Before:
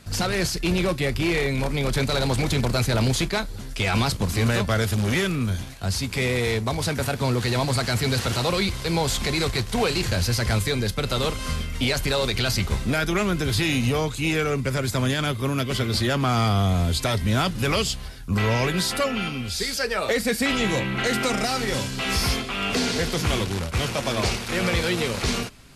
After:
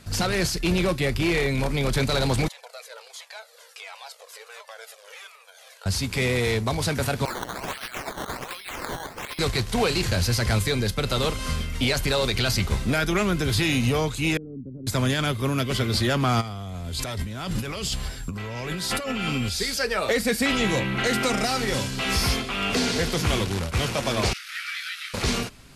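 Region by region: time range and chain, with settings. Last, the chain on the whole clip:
2.48–5.86 compressor 8:1, threshold -30 dBFS + brick-wall FIR high-pass 430 Hz + cascading flanger falling 1.4 Hz
7.25–9.39 HPF 1100 Hz + decimation with a swept rate 12× 1.3 Hz + negative-ratio compressor -33 dBFS, ratio -0.5
14.37–14.87 ladder low-pass 330 Hz, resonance 50% + low shelf 260 Hz -7.5 dB
16.4–19.48 whine 7500 Hz -52 dBFS + negative-ratio compressor -29 dBFS
24.33–25.14 Chebyshev high-pass 1300 Hz, order 6 + bell 7500 Hz -7 dB 0.82 oct + detuned doubles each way 23 cents
whole clip: dry

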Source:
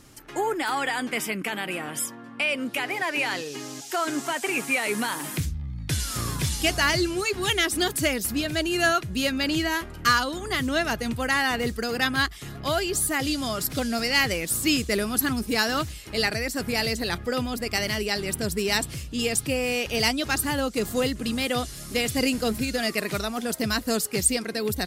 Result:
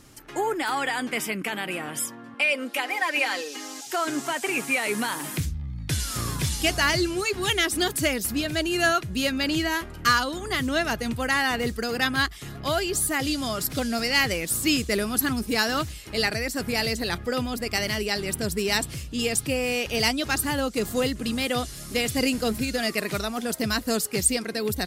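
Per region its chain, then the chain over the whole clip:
2.34–3.87 HPF 380 Hz + comb 3.8 ms, depth 63%
whole clip: dry

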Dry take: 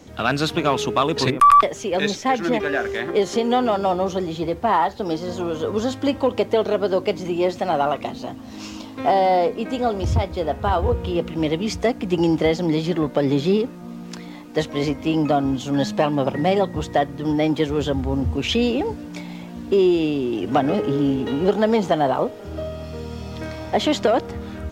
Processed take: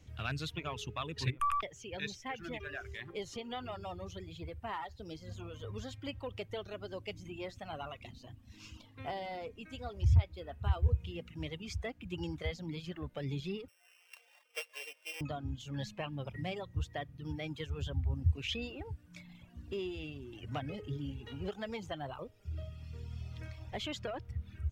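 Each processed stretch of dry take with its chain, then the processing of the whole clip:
13.68–15.21 sample sorter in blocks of 16 samples + elliptic high-pass 480 Hz, stop band 80 dB
whole clip: reverb removal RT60 1.3 s; EQ curve 110 Hz 0 dB, 220 Hz -18 dB, 860 Hz -19 dB, 2700 Hz -8 dB, 4100 Hz -13 dB; gain -3.5 dB

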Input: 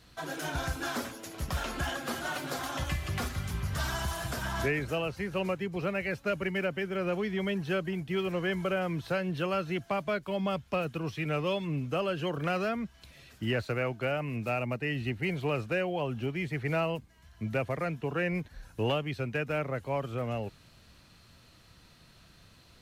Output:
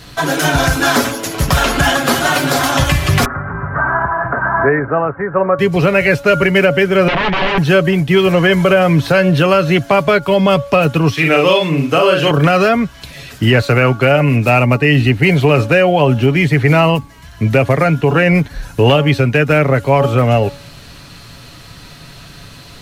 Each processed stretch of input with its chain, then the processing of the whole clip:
3.25–5.59 steep low-pass 1600 Hz 48 dB/oct + tilt +3.5 dB/oct
7.08–7.58 wrapped overs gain 30 dB + LPF 3000 Hz 24 dB/oct
11.13–12.31 HPF 370 Hz 6 dB/oct + doubler 43 ms -3 dB
whole clip: comb 7.1 ms, depth 37%; de-hum 282.5 Hz, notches 5; maximiser +22 dB; gain -1 dB

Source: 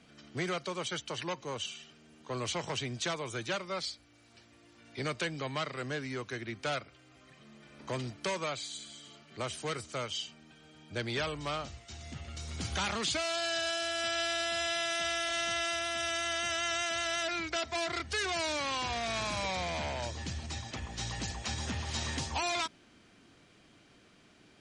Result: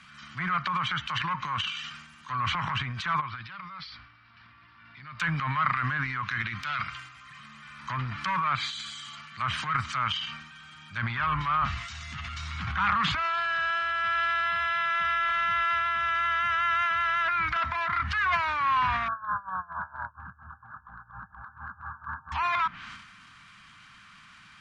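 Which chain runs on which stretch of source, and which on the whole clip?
3.21–5.2 LPF 1400 Hz 6 dB/oct + compressor 3:1, threshold -52 dBFS + careless resampling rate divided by 4×, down none, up filtered
6.36–6.79 LPF 5900 Hz + compressor 3:1, threshold -39 dBFS
19.08–22.32 brick-wall FIR low-pass 1700 Hz + tilt shelf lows -6.5 dB, about 680 Hz + dB-linear tremolo 4.3 Hz, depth 34 dB
whole clip: treble ducked by the level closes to 1500 Hz, closed at -32.5 dBFS; EQ curve 190 Hz 0 dB, 430 Hz -27 dB, 760 Hz -7 dB, 1100 Hz +13 dB, 6000 Hz +1 dB; transient shaper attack -5 dB, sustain +10 dB; gain +4 dB

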